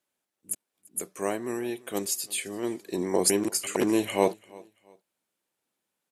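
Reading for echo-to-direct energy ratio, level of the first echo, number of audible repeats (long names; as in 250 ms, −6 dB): −23.0 dB, −23.5 dB, 2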